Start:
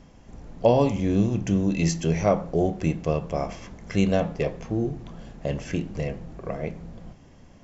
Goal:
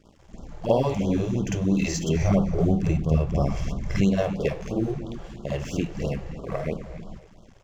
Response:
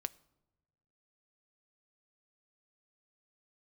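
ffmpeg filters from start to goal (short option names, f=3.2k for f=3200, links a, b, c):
-filter_complex "[0:a]asettb=1/sr,asplit=3[a][b][c];[a]atrim=end=2.164[d];[b]atrim=start=2.16:end=3.96,asetpts=PTS-STARTPTS,afade=t=in:d=0.004:c=qsin,afade=t=out:st=1.796:d=0.004:c=qsin,bass=f=250:g=12,treble=f=4k:g=0[e];[c]atrim=start=3.956[f];[d][e]acrossfade=d=0.004:c1=hsin:c2=qsin[g];[g][f]acrossfade=d=0.004:c1=qsin:c2=hsin,acompressor=threshold=-26dB:ratio=2,aeval=exprs='sgn(val(0))*max(abs(val(0))-0.00316,0)':c=same,asplit=2[h][i];[i]adelay=264,lowpass=f=4.6k:p=1,volume=-14dB,asplit=2[j][k];[k]adelay=264,lowpass=f=4.6k:p=1,volume=0.33,asplit=2[l][m];[m]adelay=264,lowpass=f=4.6k:p=1,volume=0.33[n];[h][j][l][n]amix=inputs=4:normalize=0,asplit=2[o][p];[1:a]atrim=start_sample=2205,adelay=51[q];[p][q]afir=irnorm=-1:irlink=0,volume=7dB[r];[o][r]amix=inputs=2:normalize=0,afftfilt=real='re*(1-between(b*sr/1024,200*pow(2100/200,0.5+0.5*sin(2*PI*3*pts/sr))/1.41,200*pow(2100/200,0.5+0.5*sin(2*PI*3*pts/sr))*1.41))':imag='im*(1-between(b*sr/1024,200*pow(2100/200,0.5+0.5*sin(2*PI*3*pts/sr))/1.41,200*pow(2100/200,0.5+0.5*sin(2*PI*3*pts/sr))*1.41))':win_size=1024:overlap=0.75,volume=-2dB"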